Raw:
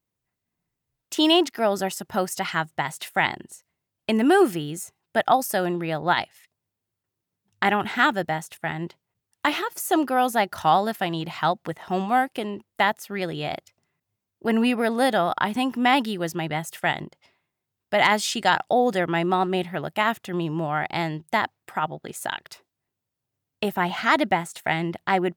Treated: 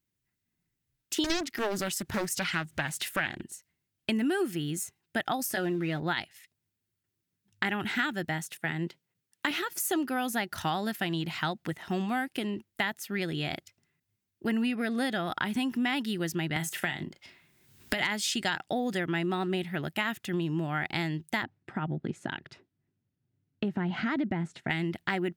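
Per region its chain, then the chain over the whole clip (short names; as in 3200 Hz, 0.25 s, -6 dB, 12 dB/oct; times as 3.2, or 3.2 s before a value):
1.24–3.43 low shelf 66 Hz +11.5 dB + upward compressor, threshold -27 dBFS + Doppler distortion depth 0.87 ms
5.49–6 G.711 law mismatch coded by mu + high shelf 5700 Hz -8 dB + notch comb 200 Hz
8.51–9.51 HPF 120 Hz 24 dB/oct + bell 490 Hz +6.5 dB 0.25 oct
14.66–15.27 high shelf 8600 Hz -7 dB + notch 920 Hz, Q 8.2
16.56–18.03 doubler 36 ms -9.5 dB + three-band squash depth 100%
21.43–24.7 tilt -4 dB/oct + compressor 2:1, threshold -25 dBFS + BPF 130–6200 Hz
whole clip: band shelf 730 Hz -8.5 dB; compressor, threshold -26 dBFS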